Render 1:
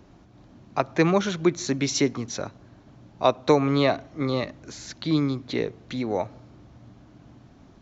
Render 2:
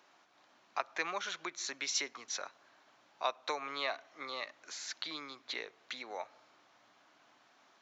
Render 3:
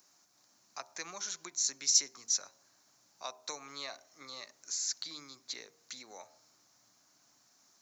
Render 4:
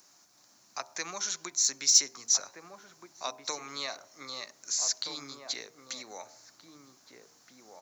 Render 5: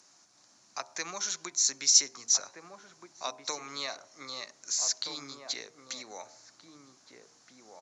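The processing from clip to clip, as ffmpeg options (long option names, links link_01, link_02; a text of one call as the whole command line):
ffmpeg -i in.wav -af "highshelf=frequency=4600:gain=-4.5,acompressor=threshold=-34dB:ratio=1.5,highpass=1100" out.wav
ffmpeg -i in.wav -af "aexciter=amount=7.4:drive=6.3:freq=4700,bass=frequency=250:gain=13,treble=frequency=4000:gain=3,bandreject=frequency=78.49:width_type=h:width=4,bandreject=frequency=156.98:width_type=h:width=4,bandreject=frequency=235.47:width_type=h:width=4,bandreject=frequency=313.96:width_type=h:width=4,bandreject=frequency=392.45:width_type=h:width=4,bandreject=frequency=470.94:width_type=h:width=4,bandreject=frequency=549.43:width_type=h:width=4,bandreject=frequency=627.92:width_type=h:width=4,bandreject=frequency=706.41:width_type=h:width=4,bandreject=frequency=784.9:width_type=h:width=4,bandreject=frequency=863.39:width_type=h:width=4,bandreject=frequency=941.88:width_type=h:width=4,bandreject=frequency=1020.37:width_type=h:width=4,volume=-9dB" out.wav
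ffmpeg -i in.wav -filter_complex "[0:a]asplit=2[link_01][link_02];[link_02]adelay=1574,volume=-6dB,highshelf=frequency=4000:gain=-35.4[link_03];[link_01][link_03]amix=inputs=2:normalize=0,acrossover=split=7000[link_04][link_05];[link_05]asoftclip=type=tanh:threshold=-32.5dB[link_06];[link_04][link_06]amix=inputs=2:normalize=0,volume=6dB" out.wav
ffmpeg -i in.wav -af "aresample=22050,aresample=44100" out.wav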